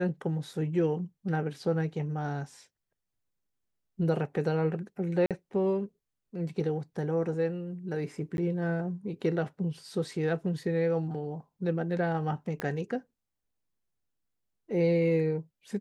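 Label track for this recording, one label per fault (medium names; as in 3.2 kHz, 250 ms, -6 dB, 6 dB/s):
5.260000	5.310000	dropout 47 ms
8.370000	8.380000	dropout 11 ms
12.600000	12.600000	pop -19 dBFS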